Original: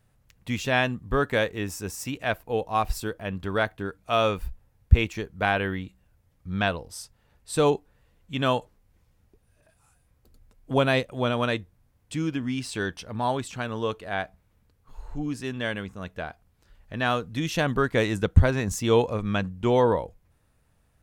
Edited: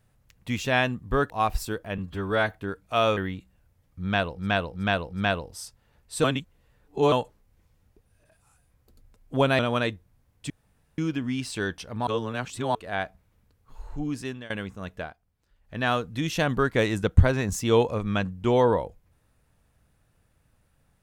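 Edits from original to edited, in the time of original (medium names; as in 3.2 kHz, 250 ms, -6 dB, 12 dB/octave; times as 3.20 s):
1.30–2.65 s: delete
3.33–3.69 s: stretch 1.5×
4.34–5.65 s: delete
6.50–6.87 s: loop, 4 plays, crossfade 0.16 s
7.61–8.49 s: reverse
10.96–11.26 s: delete
12.17 s: insert room tone 0.48 s
13.26–13.94 s: reverse
15.43–15.69 s: fade out, to -23 dB
16.19–16.96 s: dip -10 dB, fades 0.14 s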